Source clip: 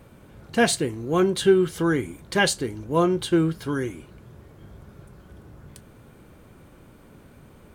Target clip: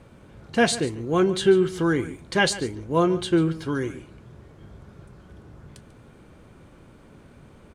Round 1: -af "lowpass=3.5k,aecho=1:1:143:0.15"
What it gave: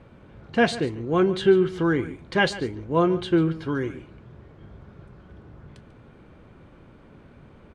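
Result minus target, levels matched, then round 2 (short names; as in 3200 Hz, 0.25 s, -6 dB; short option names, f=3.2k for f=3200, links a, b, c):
8000 Hz band -12.0 dB
-af "lowpass=8.3k,aecho=1:1:143:0.15"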